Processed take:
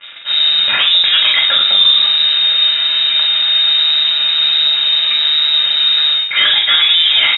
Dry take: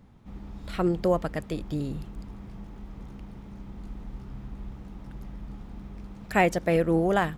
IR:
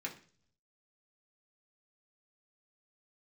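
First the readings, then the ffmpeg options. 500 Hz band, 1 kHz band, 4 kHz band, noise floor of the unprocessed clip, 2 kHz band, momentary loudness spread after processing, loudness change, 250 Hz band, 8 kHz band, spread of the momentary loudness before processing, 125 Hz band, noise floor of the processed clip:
can't be measured, +5.0 dB, +43.0 dB, −45 dBFS, +18.0 dB, 3 LU, +17.5 dB, below −15 dB, below −30 dB, 20 LU, below −15 dB, −19 dBFS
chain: -filter_complex "[0:a]lowshelf=frequency=560:width_type=q:width=1.5:gain=-7.5,areverse,acompressor=threshold=-33dB:ratio=16,areverse,acrusher=bits=8:mix=0:aa=0.5,aresample=16000,asoftclip=type=tanh:threshold=-38dB,aresample=44100,asplit=2[link_01][link_02];[link_02]adelay=40,volume=-5.5dB[link_03];[link_01][link_03]amix=inputs=2:normalize=0[link_04];[1:a]atrim=start_sample=2205,atrim=end_sample=6174[link_05];[link_04][link_05]afir=irnorm=-1:irlink=0,lowpass=frequency=3300:width_type=q:width=0.5098,lowpass=frequency=3300:width_type=q:width=0.6013,lowpass=frequency=3300:width_type=q:width=0.9,lowpass=frequency=3300:width_type=q:width=2.563,afreqshift=-3900,alimiter=level_in=34dB:limit=-1dB:release=50:level=0:latency=1,volume=-1dB"

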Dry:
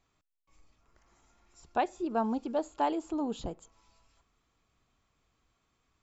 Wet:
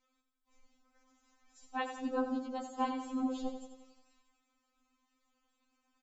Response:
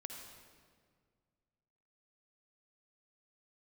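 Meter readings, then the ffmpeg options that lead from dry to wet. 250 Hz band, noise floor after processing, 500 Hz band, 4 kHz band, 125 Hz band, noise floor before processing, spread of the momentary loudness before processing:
−2.5 dB, −81 dBFS, −6.5 dB, −2.0 dB, below −15 dB, −78 dBFS, 9 LU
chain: -af "afftfilt=real='hypot(re,im)*cos(2*PI*random(0))':imag='hypot(re,im)*sin(2*PI*random(1))':win_size=512:overlap=0.75,aecho=1:1:88|176|264|352|440|528|616:0.355|0.206|0.119|0.0692|0.0402|0.0233|0.0135,afftfilt=real='re*3.46*eq(mod(b,12),0)':imag='im*3.46*eq(mod(b,12),0)':win_size=2048:overlap=0.75,volume=5dB"

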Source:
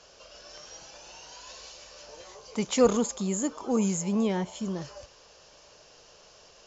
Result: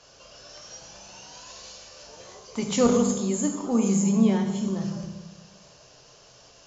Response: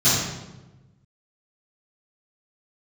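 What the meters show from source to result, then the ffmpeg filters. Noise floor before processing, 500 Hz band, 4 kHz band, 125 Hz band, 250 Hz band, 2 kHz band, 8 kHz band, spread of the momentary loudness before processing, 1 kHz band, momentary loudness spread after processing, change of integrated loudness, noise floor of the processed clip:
−56 dBFS, +1.0 dB, +1.5 dB, +6.0 dB, +5.5 dB, +1.0 dB, can't be measured, 22 LU, +1.5 dB, 22 LU, +3.5 dB, −53 dBFS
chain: -filter_complex "[0:a]asplit=2[link_01][link_02];[1:a]atrim=start_sample=2205[link_03];[link_02][link_03]afir=irnorm=-1:irlink=0,volume=-22.5dB[link_04];[link_01][link_04]amix=inputs=2:normalize=0"

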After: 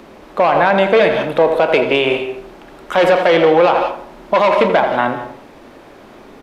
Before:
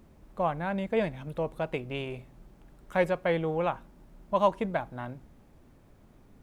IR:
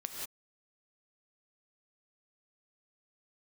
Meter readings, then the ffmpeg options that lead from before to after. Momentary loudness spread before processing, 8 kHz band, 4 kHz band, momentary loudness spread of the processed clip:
14 LU, can't be measured, +21.5 dB, 15 LU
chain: -filter_complex "[0:a]highshelf=frequency=5200:gain=10.5,asoftclip=type=hard:threshold=-24.5dB,asplit=2[link_01][link_02];[link_02]adelay=29,volume=-14dB[link_03];[link_01][link_03]amix=inputs=2:normalize=0,asplit=2[link_04][link_05];[link_05]adelay=82,lowpass=frequency=2000:poles=1,volume=-10dB,asplit=2[link_06][link_07];[link_07]adelay=82,lowpass=frequency=2000:poles=1,volume=0.44,asplit=2[link_08][link_09];[link_09]adelay=82,lowpass=frequency=2000:poles=1,volume=0.44,asplit=2[link_10][link_11];[link_11]adelay=82,lowpass=frequency=2000:poles=1,volume=0.44,asplit=2[link_12][link_13];[link_13]adelay=82,lowpass=frequency=2000:poles=1,volume=0.44[link_14];[link_04][link_06][link_08][link_10][link_12][link_14]amix=inputs=6:normalize=0,asplit=2[link_15][link_16];[1:a]atrim=start_sample=2205[link_17];[link_16][link_17]afir=irnorm=-1:irlink=0,volume=-7dB[link_18];[link_15][link_18]amix=inputs=2:normalize=0,aresample=32000,aresample=44100,acrossover=split=280 4500:gain=0.1 1 0.112[link_19][link_20][link_21];[link_19][link_20][link_21]amix=inputs=3:normalize=0,alimiter=level_in=23dB:limit=-1dB:release=50:level=0:latency=1,volume=-2dB"

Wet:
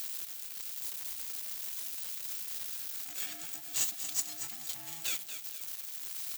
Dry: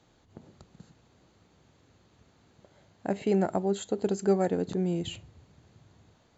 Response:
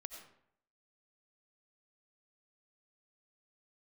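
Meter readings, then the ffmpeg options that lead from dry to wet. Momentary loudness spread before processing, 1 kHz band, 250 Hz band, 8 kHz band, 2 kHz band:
11 LU, −16.5 dB, −29.5 dB, can't be measured, +0.5 dB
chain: -filter_complex "[0:a]aeval=exprs='val(0)+0.5*0.00944*sgn(val(0))':channel_layout=same,aemphasis=mode=production:type=riaa,afftfilt=real='re*(1-between(b*sr/4096,370,1800))':imag='im*(1-between(b*sr/4096,370,1800))':win_size=4096:overlap=0.75,tiltshelf=frequency=890:gain=-10,flanger=delay=3.8:depth=1.7:regen=-58:speed=1.7:shape=triangular,asplit=2[link_01][link_02];[link_02]aecho=0:1:233|466|699|932:0.299|0.119|0.0478|0.0191[link_03];[link_01][link_03]amix=inputs=2:normalize=0,aeval=exprs='val(0)*sgn(sin(2*PI*500*n/s))':channel_layout=same,volume=-9dB"

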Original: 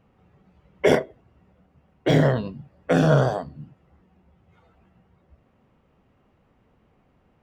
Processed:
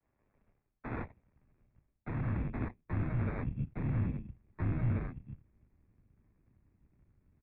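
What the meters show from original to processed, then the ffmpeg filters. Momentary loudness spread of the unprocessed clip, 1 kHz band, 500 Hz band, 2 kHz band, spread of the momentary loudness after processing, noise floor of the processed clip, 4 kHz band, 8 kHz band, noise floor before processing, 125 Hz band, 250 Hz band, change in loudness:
20 LU, −17.0 dB, −24.5 dB, −17.0 dB, 16 LU, −81 dBFS, below −30 dB, below −35 dB, −64 dBFS, −8.5 dB, −12.5 dB, −15.0 dB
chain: -filter_complex "[0:a]adynamicequalizer=threshold=0.02:dfrequency=640:dqfactor=1.3:tfrequency=640:tqfactor=1.3:attack=5:release=100:ratio=0.375:range=2:mode=cutabove:tftype=bell,asplit=2[link_01][link_02];[link_02]adelay=1691,volume=-9dB,highshelf=frequency=4000:gain=-38[link_03];[link_01][link_03]amix=inputs=2:normalize=0,areverse,acompressor=threshold=-31dB:ratio=16,areverse,aeval=exprs='0.0631*(cos(1*acos(clip(val(0)/0.0631,-1,1)))-cos(1*PI/2))+0.00794*(cos(3*acos(clip(val(0)/0.0631,-1,1)))-cos(3*PI/2))+0.0316*(cos(4*acos(clip(val(0)/0.0631,-1,1)))-cos(4*PI/2))+0.00141*(cos(7*acos(clip(val(0)/0.0631,-1,1)))-cos(7*PI/2))+0.0158*(cos(8*acos(clip(val(0)/0.0631,-1,1)))-cos(8*PI/2))':channel_layout=same,acrossover=split=130[link_04][link_05];[link_05]acrusher=samples=14:mix=1:aa=0.000001[link_06];[link_04][link_06]amix=inputs=2:normalize=0,highpass=frequency=210:width_type=q:width=0.5412,highpass=frequency=210:width_type=q:width=1.307,lowpass=frequency=2600:width_type=q:width=0.5176,lowpass=frequency=2600:width_type=q:width=0.7071,lowpass=frequency=2600:width_type=q:width=1.932,afreqshift=-160,asubboost=boost=8:cutoff=210,volume=-9dB"

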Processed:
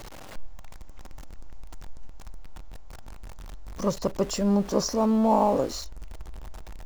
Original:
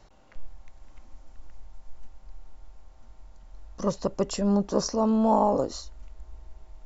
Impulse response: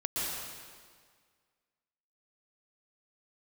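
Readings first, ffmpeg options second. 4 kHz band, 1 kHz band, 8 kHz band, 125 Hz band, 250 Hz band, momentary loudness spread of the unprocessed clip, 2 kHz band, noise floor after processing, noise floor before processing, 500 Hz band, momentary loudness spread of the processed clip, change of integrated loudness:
+2.5 dB, +0.5 dB, can't be measured, +1.0 dB, +0.5 dB, 10 LU, +5.0 dB, −41 dBFS, −54 dBFS, +0.5 dB, 23 LU, +0.5 dB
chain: -af "aeval=exprs='val(0)+0.5*0.0141*sgn(val(0))':channel_layout=same"

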